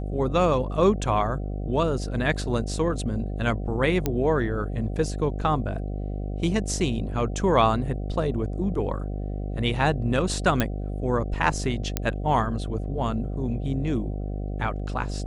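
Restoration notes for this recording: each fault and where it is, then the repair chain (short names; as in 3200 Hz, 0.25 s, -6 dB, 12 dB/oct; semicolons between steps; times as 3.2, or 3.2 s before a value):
buzz 50 Hz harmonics 15 -30 dBFS
4.06 pop -10 dBFS
10.6 pop -8 dBFS
11.97 pop -8 dBFS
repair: de-click; de-hum 50 Hz, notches 15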